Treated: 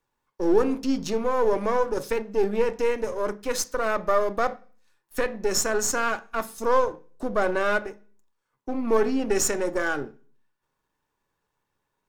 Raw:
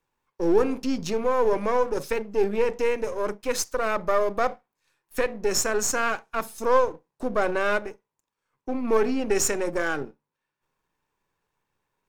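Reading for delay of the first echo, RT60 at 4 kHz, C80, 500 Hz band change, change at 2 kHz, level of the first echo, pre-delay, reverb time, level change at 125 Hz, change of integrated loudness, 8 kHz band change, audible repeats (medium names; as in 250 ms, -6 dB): no echo, 0.50 s, 26.0 dB, 0.0 dB, 0.0 dB, no echo, 3 ms, 0.45 s, -0.5 dB, 0.0 dB, 0.0 dB, no echo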